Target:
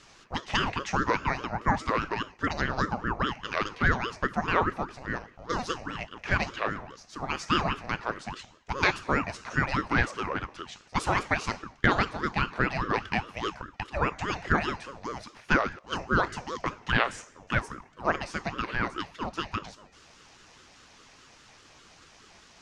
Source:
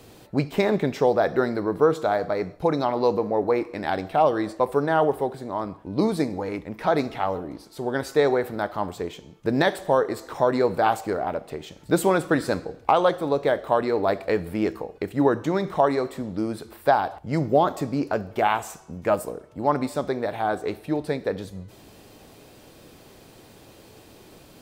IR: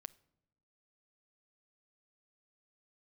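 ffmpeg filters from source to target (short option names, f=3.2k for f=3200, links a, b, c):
-af "highpass=420,equalizer=f=540:t=q:w=4:g=-5,equalizer=f=2k:t=q:w=4:g=9,equalizer=f=5.5k:t=q:w=4:g=8,lowpass=f=6.7k:w=0.5412,lowpass=f=6.7k:w=1.3066,asetrate=48000,aresample=44100,aeval=exprs='val(0)*sin(2*PI*540*n/s+540*0.55/4.9*sin(2*PI*4.9*n/s))':c=same"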